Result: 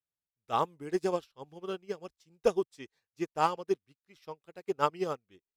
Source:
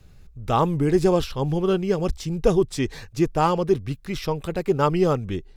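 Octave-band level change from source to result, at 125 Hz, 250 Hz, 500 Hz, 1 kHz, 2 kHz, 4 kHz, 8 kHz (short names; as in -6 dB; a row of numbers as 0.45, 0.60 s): -23.0, -15.5, -11.0, -7.0, -9.0, -11.0, -12.5 dB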